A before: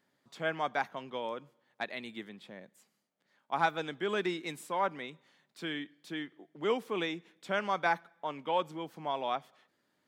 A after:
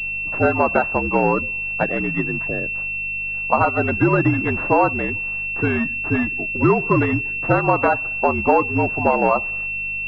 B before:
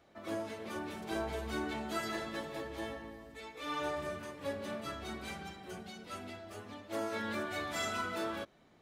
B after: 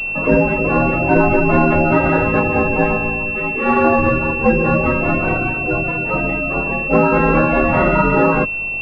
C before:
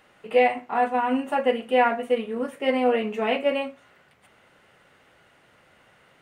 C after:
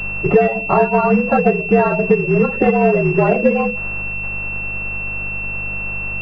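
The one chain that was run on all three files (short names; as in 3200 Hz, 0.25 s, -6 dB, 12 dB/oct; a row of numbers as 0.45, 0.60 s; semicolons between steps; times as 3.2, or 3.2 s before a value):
bin magnitudes rounded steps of 30 dB; hum 50 Hz, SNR 24 dB; frequency shift -55 Hz; compressor 6:1, threshold -34 dBFS; pulse-width modulation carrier 2700 Hz; normalise peaks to -1.5 dBFS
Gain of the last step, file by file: +22.5, +27.0, +23.0 dB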